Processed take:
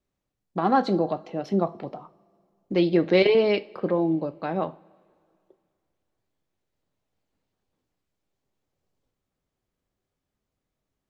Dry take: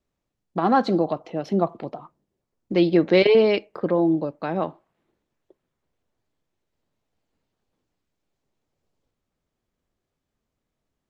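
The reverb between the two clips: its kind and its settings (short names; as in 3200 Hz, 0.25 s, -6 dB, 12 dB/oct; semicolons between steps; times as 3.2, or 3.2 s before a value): two-slope reverb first 0.28 s, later 2.3 s, from -22 dB, DRR 11.5 dB; gain -2.5 dB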